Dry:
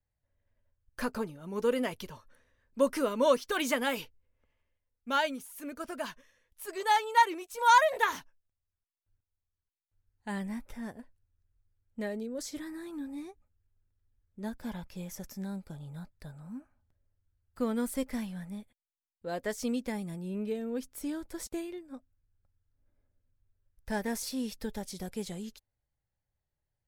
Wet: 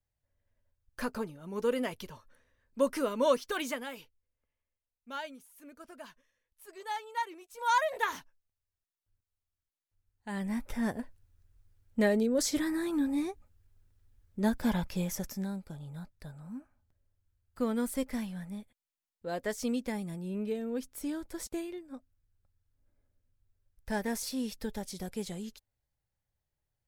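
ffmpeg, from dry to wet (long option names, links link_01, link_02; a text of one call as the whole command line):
ffmpeg -i in.wav -af "volume=19dB,afade=type=out:start_time=3.46:duration=0.42:silence=0.334965,afade=type=in:start_time=7.36:duration=0.8:silence=0.375837,afade=type=in:start_time=10.31:duration=0.61:silence=0.251189,afade=type=out:start_time=14.86:duration=0.7:silence=0.334965" out.wav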